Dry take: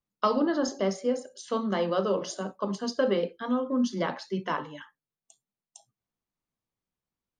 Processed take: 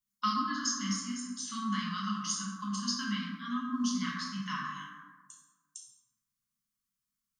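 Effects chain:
linear-phase brick-wall band-stop 290–1,000 Hz
bass and treble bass −5 dB, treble +12 dB
dense smooth reverb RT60 1.4 s, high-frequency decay 0.4×, DRR −4.5 dB
level −7.5 dB

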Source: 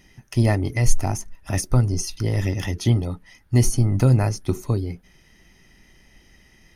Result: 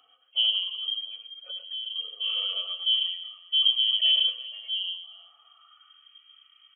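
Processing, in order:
harmonic-percussive split with one part muted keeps harmonic
0:00.68–0:01.96: downward compressor 3 to 1, threshold −31 dBFS, peak gain reduction 17 dB
multi-tap delay 98/122/358 ms −9.5/−12/−18.5 dB
voice inversion scrambler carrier 3,200 Hz
high-pass filter sweep 470 Hz → 2,000 Hz, 0:04.98–0:06.11
level −7 dB

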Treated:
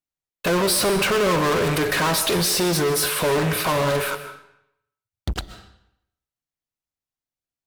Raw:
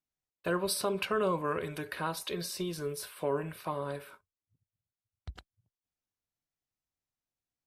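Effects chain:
in parallel at −6 dB: fuzz pedal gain 50 dB, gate −59 dBFS
on the sum: comb and all-pass reverb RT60 0.76 s, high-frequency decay 0.9×, pre-delay 90 ms, DRR 11 dB
level −1.5 dB

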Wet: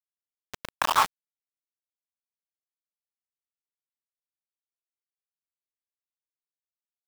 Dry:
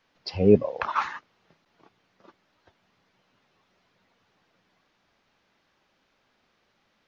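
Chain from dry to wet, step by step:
high-pass filter sweep 1,400 Hz → 260 Hz, 0:00.09–0:02.29
ambience of single reflections 22 ms −7 dB, 33 ms −4.5 dB
centre clipping without the shift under −19.5 dBFS

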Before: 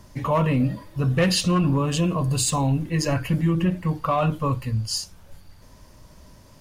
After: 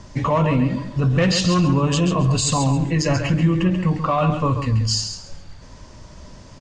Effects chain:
Butterworth low-pass 7,900 Hz 48 dB per octave
brickwall limiter −18.5 dBFS, peak gain reduction 6.5 dB
repeating echo 136 ms, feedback 25%, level −8 dB
level +7 dB

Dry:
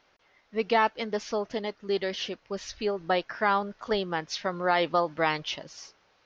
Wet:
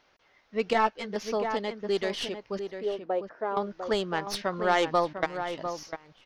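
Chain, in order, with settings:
stylus tracing distortion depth 0.042 ms
0:02.59–0:03.57: resonant band-pass 490 Hz, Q 1.8
0:05.13–0:05.59: output level in coarse steps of 23 dB
slap from a distant wall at 120 metres, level −8 dB
0:00.73–0:01.16: string-ensemble chorus

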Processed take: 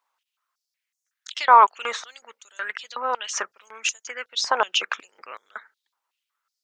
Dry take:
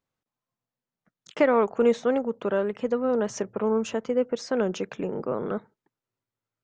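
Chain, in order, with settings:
harmonic and percussive parts rebalanced percussive +7 dB
high-pass on a step sequencer 5.4 Hz 960–6,500 Hz
level +2.5 dB

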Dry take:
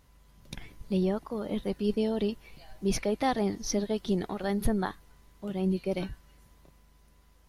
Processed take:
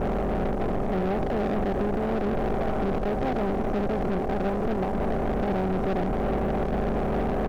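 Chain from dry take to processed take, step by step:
compressor on every frequency bin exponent 0.2
elliptic low-pass filter 730 Hz, stop band 40 dB
low-shelf EQ 470 Hz −4.5 dB
in parallel at +0.5 dB: speech leveller
on the sum: brickwall limiter −15.5 dBFS, peak gain reduction 10.5 dB
leveller curve on the samples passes 3
on a send: single-tap delay 707 ms −12.5 dB
on the sum: level −6.5 dB

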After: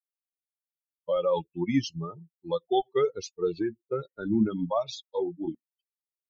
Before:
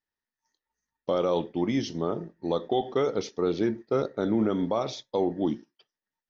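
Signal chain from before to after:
spectral dynamics exaggerated over time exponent 3
0:03.61–0:04.19: downward compressor 4 to 1, threshold −32 dBFS, peak gain reduction 6.5 dB
0:05.07–0:05.55: micro pitch shift up and down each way 19 cents
level +5.5 dB

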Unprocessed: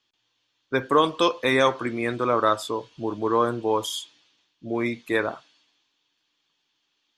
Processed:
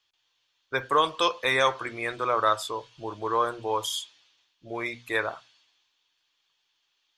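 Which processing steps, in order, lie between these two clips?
parametric band 240 Hz −14.5 dB 1.5 octaves
mains-hum notches 60/120/180/240 Hz

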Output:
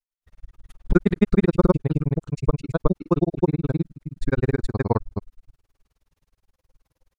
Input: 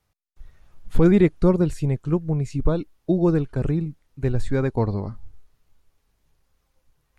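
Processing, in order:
dynamic equaliser 1,300 Hz, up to +7 dB, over −42 dBFS, Q 1.3
granular cloud 40 ms, grains 19 per second, spray 276 ms, pitch spread up and down by 0 semitones
level +3.5 dB

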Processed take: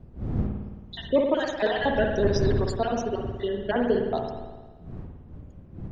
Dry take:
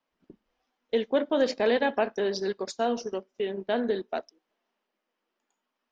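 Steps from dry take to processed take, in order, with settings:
time-frequency cells dropped at random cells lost 49%
wind on the microphone 160 Hz −38 dBFS
spring reverb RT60 1.3 s, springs 54 ms, chirp 70 ms, DRR 2 dB
level +3 dB

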